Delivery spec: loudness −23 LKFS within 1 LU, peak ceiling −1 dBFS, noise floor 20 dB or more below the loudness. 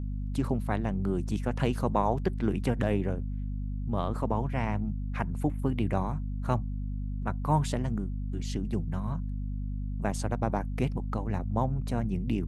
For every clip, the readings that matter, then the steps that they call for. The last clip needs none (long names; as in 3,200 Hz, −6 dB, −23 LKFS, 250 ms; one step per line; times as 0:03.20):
mains hum 50 Hz; hum harmonics up to 250 Hz; level of the hum −30 dBFS; integrated loudness −31.5 LKFS; sample peak −11.5 dBFS; target loudness −23.0 LKFS
→ hum removal 50 Hz, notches 5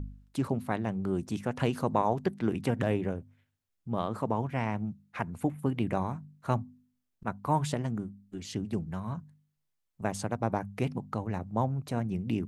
mains hum none found; integrated loudness −33.0 LKFS; sample peak −12.5 dBFS; target loudness −23.0 LKFS
→ level +10 dB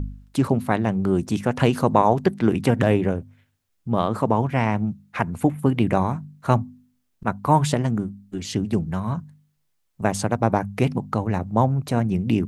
integrated loudness −23.0 LKFS; sample peak −2.5 dBFS; background noise floor −70 dBFS